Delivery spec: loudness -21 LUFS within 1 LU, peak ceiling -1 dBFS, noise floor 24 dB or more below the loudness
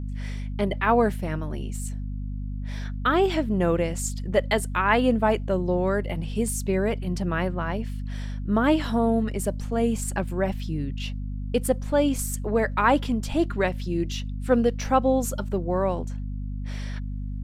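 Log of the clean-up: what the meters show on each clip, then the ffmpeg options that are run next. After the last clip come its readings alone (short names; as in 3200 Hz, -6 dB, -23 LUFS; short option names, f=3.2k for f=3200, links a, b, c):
hum 50 Hz; harmonics up to 250 Hz; hum level -28 dBFS; loudness -25.5 LUFS; peak -7.0 dBFS; loudness target -21.0 LUFS
-> -af "bandreject=f=50:t=h:w=6,bandreject=f=100:t=h:w=6,bandreject=f=150:t=h:w=6,bandreject=f=200:t=h:w=6,bandreject=f=250:t=h:w=6"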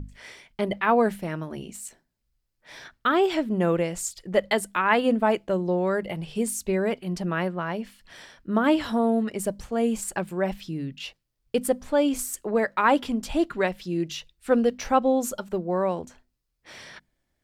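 hum none; loudness -25.5 LUFS; peak -8.0 dBFS; loudness target -21.0 LUFS
-> -af "volume=4.5dB"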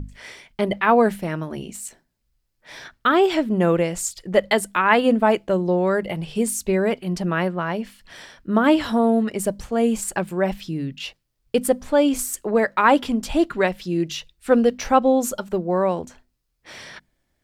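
loudness -21.0 LUFS; peak -3.5 dBFS; noise floor -73 dBFS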